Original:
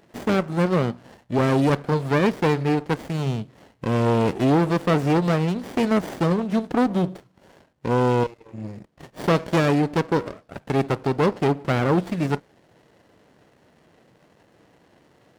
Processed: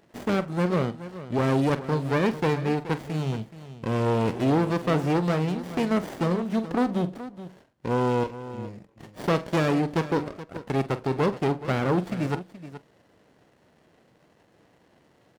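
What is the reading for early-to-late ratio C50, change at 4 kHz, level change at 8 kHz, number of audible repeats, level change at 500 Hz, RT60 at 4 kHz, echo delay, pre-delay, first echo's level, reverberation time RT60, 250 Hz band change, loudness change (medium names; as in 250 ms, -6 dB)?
no reverb, -3.5 dB, -3.5 dB, 2, -3.5 dB, no reverb, 45 ms, no reverb, -14.0 dB, no reverb, -3.5 dB, -4.0 dB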